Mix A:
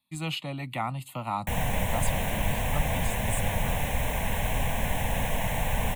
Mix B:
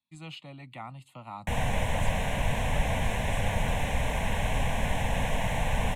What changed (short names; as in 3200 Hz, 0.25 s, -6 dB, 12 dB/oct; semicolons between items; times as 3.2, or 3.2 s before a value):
speech -10.5 dB; master: add LPF 7800 Hz 12 dB/oct